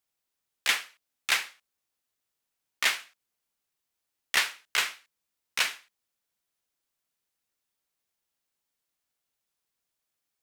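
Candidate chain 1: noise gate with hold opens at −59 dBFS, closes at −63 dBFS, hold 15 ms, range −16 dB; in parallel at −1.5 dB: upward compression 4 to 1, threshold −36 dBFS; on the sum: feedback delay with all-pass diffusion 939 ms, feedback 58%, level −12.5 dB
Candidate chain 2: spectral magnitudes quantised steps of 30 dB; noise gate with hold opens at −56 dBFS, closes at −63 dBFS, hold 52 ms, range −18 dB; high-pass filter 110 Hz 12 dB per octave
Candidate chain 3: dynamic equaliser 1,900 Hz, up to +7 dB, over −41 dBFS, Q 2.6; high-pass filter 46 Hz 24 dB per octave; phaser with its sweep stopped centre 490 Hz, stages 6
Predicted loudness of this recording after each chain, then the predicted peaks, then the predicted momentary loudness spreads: −25.5, −29.0, −32.5 LKFS; −5.0, −10.0, −13.5 dBFS; 20, 12, 12 LU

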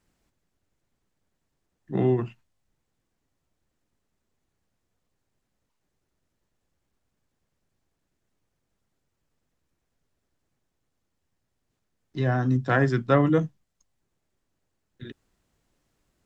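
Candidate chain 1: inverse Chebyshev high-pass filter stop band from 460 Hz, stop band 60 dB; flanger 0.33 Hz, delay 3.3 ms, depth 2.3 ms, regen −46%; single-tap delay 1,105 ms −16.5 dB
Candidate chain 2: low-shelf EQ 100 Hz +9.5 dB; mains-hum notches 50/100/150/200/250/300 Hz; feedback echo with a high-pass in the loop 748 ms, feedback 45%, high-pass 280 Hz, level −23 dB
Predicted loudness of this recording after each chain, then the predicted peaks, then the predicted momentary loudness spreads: −40.5, −23.0 LKFS; −20.0, −6.0 dBFS; 22, 13 LU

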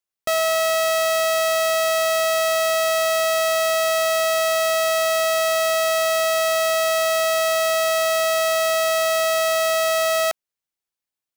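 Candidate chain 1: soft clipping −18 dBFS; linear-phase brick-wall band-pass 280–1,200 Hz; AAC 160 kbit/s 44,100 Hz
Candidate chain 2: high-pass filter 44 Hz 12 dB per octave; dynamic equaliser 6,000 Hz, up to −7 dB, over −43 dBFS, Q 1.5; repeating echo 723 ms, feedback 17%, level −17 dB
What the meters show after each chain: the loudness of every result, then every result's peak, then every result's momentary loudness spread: −24.5, −19.0 LKFS; −20.0, −13.5 dBFS; 0, 1 LU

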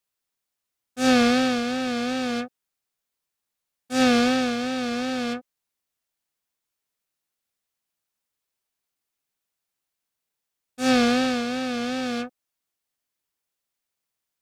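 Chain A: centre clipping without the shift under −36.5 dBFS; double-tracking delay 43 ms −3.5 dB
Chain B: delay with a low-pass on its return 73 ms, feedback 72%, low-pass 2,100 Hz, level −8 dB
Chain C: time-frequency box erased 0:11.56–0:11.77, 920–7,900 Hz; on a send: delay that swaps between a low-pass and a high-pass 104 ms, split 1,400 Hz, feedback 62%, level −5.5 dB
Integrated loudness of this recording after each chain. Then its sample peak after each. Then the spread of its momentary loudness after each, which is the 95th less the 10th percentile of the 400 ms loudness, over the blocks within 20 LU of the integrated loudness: −21.5, −22.5, −22.5 LKFS; −7.0, −9.0, −8.5 dBFS; 12, 16, 14 LU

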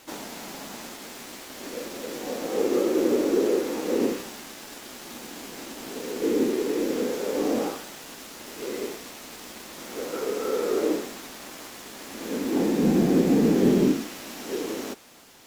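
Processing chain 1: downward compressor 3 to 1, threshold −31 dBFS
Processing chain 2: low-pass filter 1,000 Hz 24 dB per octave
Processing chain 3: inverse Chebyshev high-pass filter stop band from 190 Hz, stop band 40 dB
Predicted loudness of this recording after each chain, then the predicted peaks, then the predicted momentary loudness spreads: −34.5, −26.0, −31.5 LKFS; −19.5, −9.0, −14.0 dBFS; 9, 23, 14 LU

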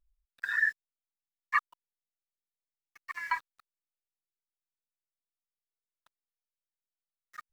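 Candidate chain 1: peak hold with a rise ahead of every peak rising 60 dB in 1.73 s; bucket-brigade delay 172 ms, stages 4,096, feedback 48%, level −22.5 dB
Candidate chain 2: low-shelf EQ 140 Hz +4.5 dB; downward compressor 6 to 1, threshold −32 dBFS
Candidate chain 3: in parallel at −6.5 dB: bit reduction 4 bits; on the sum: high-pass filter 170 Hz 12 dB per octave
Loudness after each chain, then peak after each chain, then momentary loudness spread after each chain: −27.0, −38.0, −28.5 LKFS; −9.5, −20.5, −9.0 dBFS; 20, 16, 14 LU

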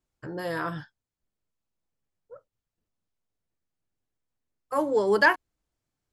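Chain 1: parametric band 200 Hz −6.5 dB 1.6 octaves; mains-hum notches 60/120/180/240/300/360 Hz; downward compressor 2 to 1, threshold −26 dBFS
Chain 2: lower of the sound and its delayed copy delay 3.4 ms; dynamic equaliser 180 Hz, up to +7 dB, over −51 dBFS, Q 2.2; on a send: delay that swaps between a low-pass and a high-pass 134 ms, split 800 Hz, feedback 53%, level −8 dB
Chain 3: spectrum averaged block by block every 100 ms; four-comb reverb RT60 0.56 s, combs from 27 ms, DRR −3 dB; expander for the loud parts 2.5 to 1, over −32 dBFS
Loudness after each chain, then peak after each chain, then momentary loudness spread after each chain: −30.5, −28.0, −26.0 LKFS; −13.0, −6.0, −8.0 dBFS; 15, 18, 22 LU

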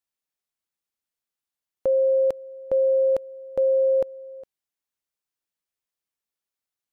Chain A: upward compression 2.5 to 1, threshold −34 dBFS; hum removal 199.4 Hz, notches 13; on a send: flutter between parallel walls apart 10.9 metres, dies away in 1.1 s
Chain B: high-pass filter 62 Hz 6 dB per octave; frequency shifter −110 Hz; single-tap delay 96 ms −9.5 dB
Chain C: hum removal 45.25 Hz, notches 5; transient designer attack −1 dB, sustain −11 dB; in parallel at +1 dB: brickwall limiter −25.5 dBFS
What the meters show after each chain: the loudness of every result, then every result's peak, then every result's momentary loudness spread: −22.0, −25.0, −20.0 LKFS; −13.0, −15.5, −13.5 dBFS; 11, 10, 17 LU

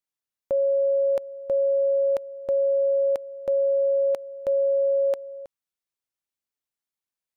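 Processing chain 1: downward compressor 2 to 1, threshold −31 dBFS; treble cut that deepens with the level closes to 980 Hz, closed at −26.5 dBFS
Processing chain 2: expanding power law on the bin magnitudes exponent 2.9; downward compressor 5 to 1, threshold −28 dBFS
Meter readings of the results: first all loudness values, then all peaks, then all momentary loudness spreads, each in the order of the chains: −30.0, −30.5 LKFS; −18.5, −22.0 dBFS; 6, 5 LU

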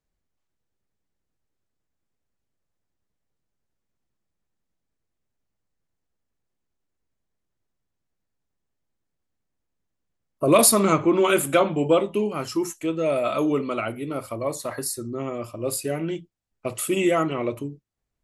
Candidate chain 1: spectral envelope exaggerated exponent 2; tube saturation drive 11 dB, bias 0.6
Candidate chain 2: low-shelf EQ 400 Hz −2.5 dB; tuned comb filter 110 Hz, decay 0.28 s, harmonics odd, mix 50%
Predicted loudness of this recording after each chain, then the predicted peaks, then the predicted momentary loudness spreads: −26.5, −28.5 LKFS; −7.5, −8.5 dBFS; 12, 13 LU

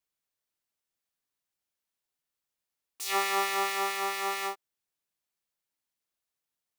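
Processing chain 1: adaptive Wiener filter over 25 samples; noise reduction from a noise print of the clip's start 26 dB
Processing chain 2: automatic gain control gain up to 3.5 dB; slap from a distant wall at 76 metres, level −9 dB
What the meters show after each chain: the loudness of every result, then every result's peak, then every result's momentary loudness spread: −31.0, −26.0 LKFS; −14.5, −10.5 dBFS; 11, 15 LU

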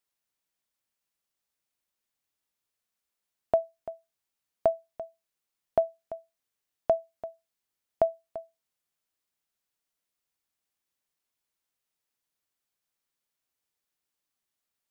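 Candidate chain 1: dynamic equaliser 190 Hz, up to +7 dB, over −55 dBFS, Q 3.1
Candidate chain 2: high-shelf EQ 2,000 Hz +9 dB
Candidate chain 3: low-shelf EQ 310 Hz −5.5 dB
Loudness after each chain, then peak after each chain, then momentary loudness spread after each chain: −30.5, −30.0, −31.5 LKFS; −12.5, −11.5, −13.5 dBFS; 15, 15, 15 LU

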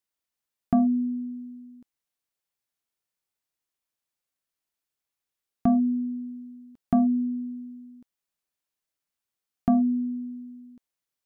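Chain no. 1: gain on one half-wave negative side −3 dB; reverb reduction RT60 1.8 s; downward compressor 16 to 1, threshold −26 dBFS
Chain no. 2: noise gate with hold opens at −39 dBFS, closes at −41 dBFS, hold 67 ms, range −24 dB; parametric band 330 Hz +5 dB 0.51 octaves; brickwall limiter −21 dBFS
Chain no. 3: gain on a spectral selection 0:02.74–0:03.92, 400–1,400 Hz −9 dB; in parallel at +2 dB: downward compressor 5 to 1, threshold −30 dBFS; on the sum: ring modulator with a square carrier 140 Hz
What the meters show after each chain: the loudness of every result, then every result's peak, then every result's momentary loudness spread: −36.0, −29.0, −23.0 LKFS; −14.5, −21.0, −8.0 dBFS; 19, 18, 19 LU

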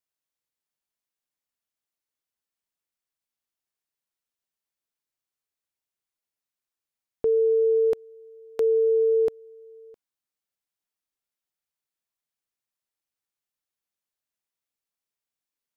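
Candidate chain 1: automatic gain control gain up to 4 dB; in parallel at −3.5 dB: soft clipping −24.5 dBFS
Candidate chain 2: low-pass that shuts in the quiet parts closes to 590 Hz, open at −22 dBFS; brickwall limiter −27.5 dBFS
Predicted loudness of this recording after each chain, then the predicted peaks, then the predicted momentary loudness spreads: −17.0, −33.0 LKFS; −12.0, −27.5 dBFS; 8, 17 LU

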